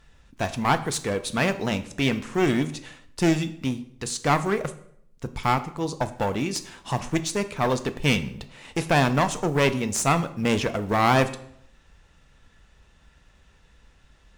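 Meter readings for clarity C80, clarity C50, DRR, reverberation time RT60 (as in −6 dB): 17.5 dB, 14.5 dB, 9.5 dB, 0.70 s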